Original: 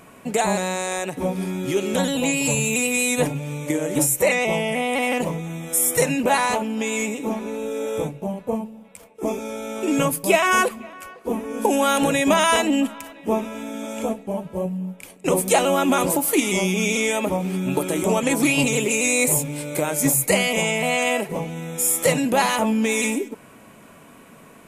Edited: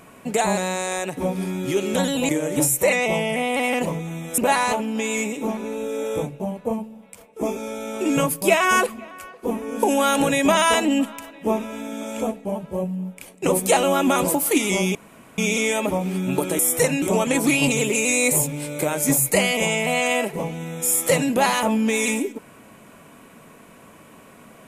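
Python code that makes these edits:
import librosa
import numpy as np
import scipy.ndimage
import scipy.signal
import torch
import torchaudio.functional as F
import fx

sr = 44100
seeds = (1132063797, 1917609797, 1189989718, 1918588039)

y = fx.edit(x, sr, fx.cut(start_s=2.29, length_s=1.39),
    fx.move(start_s=5.77, length_s=0.43, to_s=17.98),
    fx.insert_room_tone(at_s=16.77, length_s=0.43), tone=tone)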